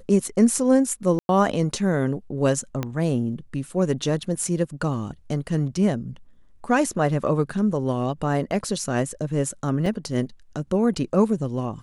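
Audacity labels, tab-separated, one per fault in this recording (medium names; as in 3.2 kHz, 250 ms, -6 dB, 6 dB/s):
1.190000	1.290000	dropout 101 ms
2.830000	2.830000	pop -13 dBFS
9.860000	9.860000	dropout 2.2 ms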